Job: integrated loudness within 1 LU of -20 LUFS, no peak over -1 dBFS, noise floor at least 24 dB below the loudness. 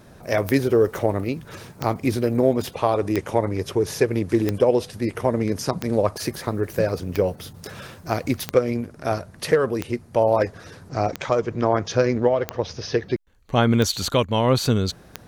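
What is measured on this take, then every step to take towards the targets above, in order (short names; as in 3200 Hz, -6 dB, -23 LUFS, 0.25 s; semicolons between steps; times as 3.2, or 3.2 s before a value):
clicks 12; loudness -23.0 LUFS; peak -5.0 dBFS; loudness target -20.0 LUFS
-> de-click; gain +3 dB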